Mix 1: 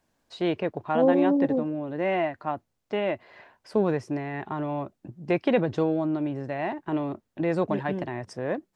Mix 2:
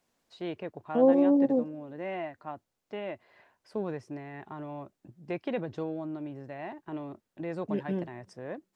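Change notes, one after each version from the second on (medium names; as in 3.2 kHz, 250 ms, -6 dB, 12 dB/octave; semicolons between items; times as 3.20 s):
first voice -10.0 dB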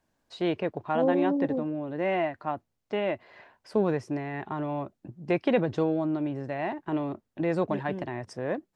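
first voice +8.5 dB; second voice -4.5 dB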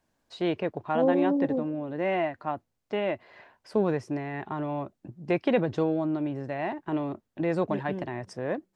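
second voice: send +9.5 dB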